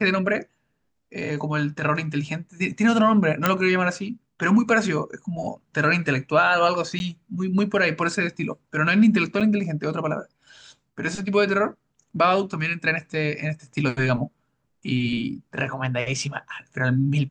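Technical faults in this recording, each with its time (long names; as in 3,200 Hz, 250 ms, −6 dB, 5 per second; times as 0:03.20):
0:03.46: click −4 dBFS
0:06.99–0:07.00: drop-out 11 ms
0:09.40–0:09.41: drop-out 6.7 ms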